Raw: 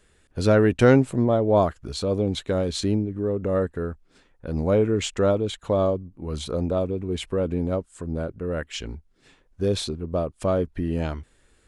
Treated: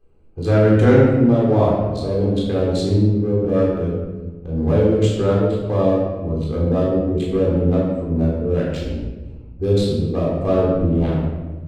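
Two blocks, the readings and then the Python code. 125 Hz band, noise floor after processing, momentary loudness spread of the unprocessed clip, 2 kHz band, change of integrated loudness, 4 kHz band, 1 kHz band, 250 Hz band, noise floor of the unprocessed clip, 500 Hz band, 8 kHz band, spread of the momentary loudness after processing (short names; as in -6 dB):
+8.5 dB, -36 dBFS, 13 LU, +1.5 dB, +6.0 dB, -1.5 dB, +2.5 dB, +7.0 dB, -62 dBFS, +5.0 dB, n/a, 12 LU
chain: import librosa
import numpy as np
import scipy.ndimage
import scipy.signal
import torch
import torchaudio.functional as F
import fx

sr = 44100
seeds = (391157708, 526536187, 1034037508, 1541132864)

y = fx.wiener(x, sr, points=25)
y = fx.rider(y, sr, range_db=3, speed_s=2.0)
y = fx.room_shoebox(y, sr, seeds[0], volume_m3=800.0, walls='mixed', distance_m=3.8)
y = y * 10.0 ** (-4.0 / 20.0)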